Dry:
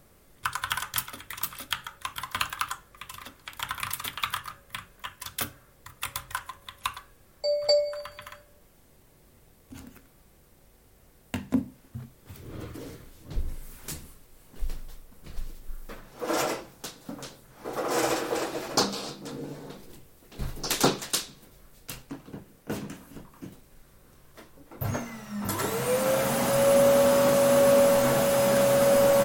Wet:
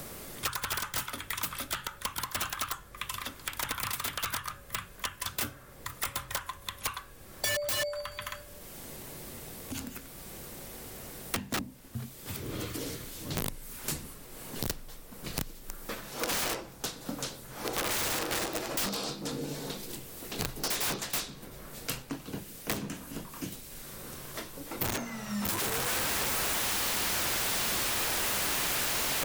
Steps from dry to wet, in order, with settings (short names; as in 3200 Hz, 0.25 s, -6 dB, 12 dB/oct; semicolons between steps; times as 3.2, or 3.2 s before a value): wrapped overs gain 24.5 dB; three-band squash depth 70%